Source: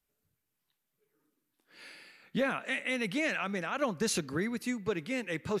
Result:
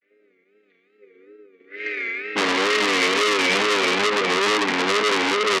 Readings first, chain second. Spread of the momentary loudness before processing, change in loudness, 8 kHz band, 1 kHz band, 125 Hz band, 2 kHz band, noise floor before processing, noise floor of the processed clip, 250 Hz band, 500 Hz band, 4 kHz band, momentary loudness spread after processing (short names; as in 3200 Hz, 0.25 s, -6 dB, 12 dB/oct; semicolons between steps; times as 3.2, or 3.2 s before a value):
12 LU, +13.5 dB, +11.0 dB, +17.5 dB, +0.5 dB, +15.0 dB, -84 dBFS, -64 dBFS, +6.5 dB, +12.5 dB, +20.0 dB, 8 LU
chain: chord vocoder major triad, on G3; on a send: feedback echo 0.439 s, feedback 36%, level -5 dB; on the sum: Schroeder reverb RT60 2.3 s, combs from 27 ms, DRR -3 dB; wow and flutter 130 cents; transient shaper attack 0 dB, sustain -8 dB; double band-pass 940 Hz, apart 2.3 oct; vocal rider 0.5 s; bell 1400 Hz +13.5 dB 2.5 oct; compressor, threshold -32 dBFS, peak gain reduction 5 dB; maximiser +28.5 dB; core saturation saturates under 3300 Hz; gain -3 dB